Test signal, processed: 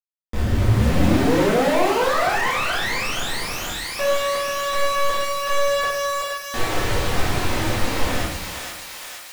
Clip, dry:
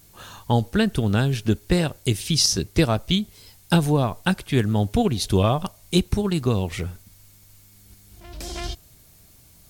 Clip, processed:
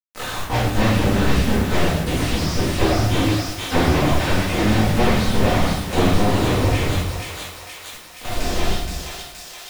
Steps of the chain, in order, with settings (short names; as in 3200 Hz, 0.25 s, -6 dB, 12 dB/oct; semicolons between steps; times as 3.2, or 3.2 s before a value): cycle switcher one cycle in 2, muted; notches 50/100/150/200/250 Hz; in parallel at +1 dB: compressor 8:1, threshold -34 dBFS; on the sum: flange 0.29 Hz, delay 2.1 ms, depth 2.7 ms, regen -50%; companded quantiser 2-bit; on a send: thinning echo 0.472 s, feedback 64%, high-pass 750 Hz, level -7 dB; on the sum: shoebox room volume 160 m³, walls mixed, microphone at 2 m; slew limiter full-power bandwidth 180 Hz